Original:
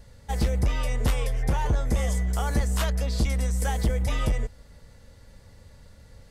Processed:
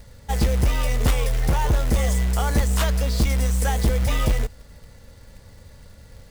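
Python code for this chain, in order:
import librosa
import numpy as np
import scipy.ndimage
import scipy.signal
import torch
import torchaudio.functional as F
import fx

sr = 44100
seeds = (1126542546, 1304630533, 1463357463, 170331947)

y = fx.quant_float(x, sr, bits=2)
y = y * 10.0 ** (4.5 / 20.0)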